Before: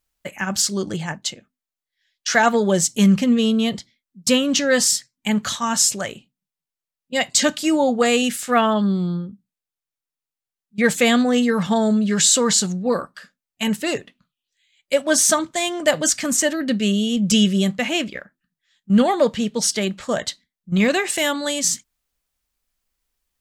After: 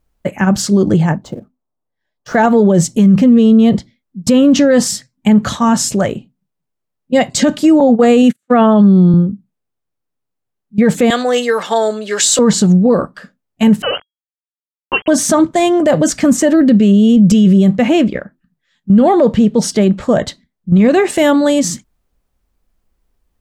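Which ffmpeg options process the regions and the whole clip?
ffmpeg -i in.wav -filter_complex "[0:a]asettb=1/sr,asplit=3[link_01][link_02][link_03];[link_01]atrim=end=1.224[link_04];[link_02]atrim=start=1.22:end=2.35,asetpts=PTS-STARTPTS,afade=type=in:duration=0.004:curve=qsin,afade=type=out:start_time=1.126:duration=0.004:curve=qsin,highshelf=frequency=1500:width_type=q:width=1.5:gain=-13.5,acrusher=bits=4:mode=log:mix=0:aa=0.000001[link_05];[link_03]atrim=start=2.346[link_06];[link_04][link_05]acrossfade=duration=0.004:curve1=hsin:curve2=qsin[link_07];[link_07][link_06]acrossfade=duration=0.004:curve1=qsin:curve2=hsin,asettb=1/sr,asplit=3[link_08][link_09][link_10];[link_08]atrim=end=7.804[link_11];[link_09]atrim=start=7.8:end=9.14,asetpts=PTS-STARTPTS,afade=type=in:duration=0.004:curve=qsin,afade=type=out:start_time=1.336:duration=0.004:curve=qsin,agate=range=-46dB:threshold=-24dB:ratio=16:release=100:detection=peak,highpass=frequency=100:width=0.5412,highpass=frequency=100:width=1.3066,bandreject=frequency=5100:width=9.3[link_12];[link_10]atrim=start=9.136[link_13];[link_11][link_12]acrossfade=duration=0.004:curve1=hsin:curve2=qsin[link_14];[link_14][link_13]acrossfade=duration=0.004:curve1=qsin:curve2=hsin,asettb=1/sr,asplit=3[link_15][link_16][link_17];[link_15]atrim=end=11.104[link_18];[link_16]atrim=start=11.1:end=12.39,asetpts=PTS-STARTPTS,afade=type=in:duration=0.004:curve=qsin,afade=type=out:start_time=1.286:duration=0.004:curve=qsin,highpass=frequency=370:width=0.5412,highpass=frequency=370:width=1.3066,tiltshelf=frequency=1400:gain=-7.5,acrusher=bits=9:mode=log:mix=0:aa=0.000001[link_19];[link_17]atrim=start=12.386[link_20];[link_18][link_19]acrossfade=duration=0.004:curve1=hsin:curve2=qsin[link_21];[link_21][link_20]acrossfade=duration=0.004:curve1=qsin:curve2=hsin,asettb=1/sr,asplit=3[link_22][link_23][link_24];[link_22]atrim=end=13.824[link_25];[link_23]atrim=start=13.82:end=15.08,asetpts=PTS-STARTPTS,afade=type=in:duration=0.004:curve=qsin,afade=type=out:start_time=1.256:duration=0.004:curve=qsin,bandreject=frequency=630:width=7.1,aeval=exprs='val(0)*gte(abs(val(0)),0.0299)':channel_layout=same,lowpass=frequency=2800:width_type=q:width=0.5098,lowpass=frequency=2800:width_type=q:width=0.6013,lowpass=frequency=2800:width_type=q:width=0.9,lowpass=frequency=2800:width_type=q:width=2.563,afreqshift=-3300[link_26];[link_24]atrim=start=15.076[link_27];[link_25][link_26]acrossfade=duration=0.004:curve1=hsin:curve2=qsin[link_28];[link_28][link_27]acrossfade=duration=0.004:curve1=qsin:curve2=hsin,tiltshelf=frequency=1200:gain=9.5,alimiter=limit=-10.5dB:level=0:latency=1:release=45,volume=8dB" out.wav

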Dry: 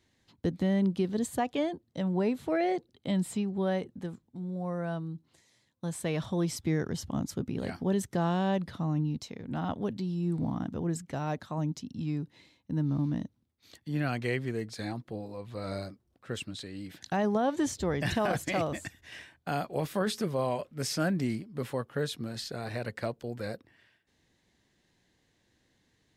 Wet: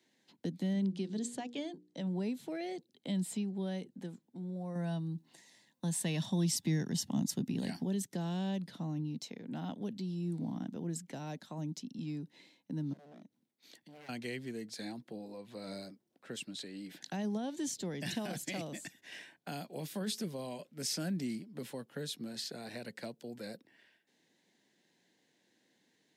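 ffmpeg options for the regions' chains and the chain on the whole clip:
ffmpeg -i in.wav -filter_complex "[0:a]asettb=1/sr,asplit=3[link_01][link_02][link_03];[link_01]atrim=end=0.734[link_04];[link_02]atrim=start=0.73:end=2.07,asetpts=PTS-STARTPTS,afade=type=in:duration=0.004:curve=qsin,afade=type=out:start_time=1.336:duration=0.004:curve=qsin,lowpass=frequency=8800:width=0.5412,lowpass=frequency=8800:width=1.3066,bandreject=frequency=60:width_type=h:width=6,bandreject=frequency=120:width_type=h:width=6,bandreject=frequency=180:width_type=h:width=6,bandreject=frequency=240:width_type=h:width=6,bandreject=frequency=300:width_type=h:width=6,bandreject=frequency=360:width_type=h:width=6,bandreject=frequency=420:width_type=h:width=6,bandreject=frequency=480:width_type=h:width=6[link_05];[link_03]atrim=start=2.066[link_06];[link_04][link_05]acrossfade=duration=0.004:curve1=hsin:curve2=qsin[link_07];[link_07][link_06]acrossfade=duration=0.004:curve1=qsin:curve2=hsin,asettb=1/sr,asplit=3[link_08][link_09][link_10];[link_08]atrim=end=4.754[link_11];[link_09]atrim=start=4.75:end=7.85,asetpts=PTS-STARTPTS,afade=type=in:duration=0.004:curve=qsin,afade=type=out:start_time=3.096:duration=0.004:curve=qsin,aecho=1:1:1.1:0.35,atrim=end_sample=136710,acontrast=34[link_12];[link_10]atrim=start=7.846[link_13];[link_11][link_12]acrossfade=duration=0.004:curve1=hsin:curve2=qsin[link_14];[link_14][link_13]acrossfade=duration=0.004:curve1=qsin:curve2=hsin,asettb=1/sr,asplit=3[link_15][link_16][link_17];[link_15]atrim=end=12.934[link_18];[link_16]atrim=start=12.93:end=14.09,asetpts=PTS-STARTPTS,afade=type=in:duration=0.004:curve=qsin,afade=type=out:start_time=1.156:duration=0.004:curve=qsin,aeval=exprs='0.0299*(abs(mod(val(0)/0.0299+3,4)-2)-1)':channel_layout=same,acompressor=threshold=-49dB:ratio=8:attack=3.2:release=140:knee=1:detection=peak[link_19];[link_17]atrim=start=14.086[link_20];[link_18][link_19]acrossfade=duration=0.004:curve1=hsin:curve2=qsin[link_21];[link_21][link_20]acrossfade=duration=0.004:curve1=qsin:curve2=hsin,highpass=frequency=180:width=0.5412,highpass=frequency=180:width=1.3066,equalizer=frequency=1200:width=5:gain=-8.5,acrossover=split=230|3000[link_22][link_23][link_24];[link_23]acompressor=threshold=-47dB:ratio=2.5[link_25];[link_22][link_25][link_24]amix=inputs=3:normalize=0,volume=-1dB" out.wav

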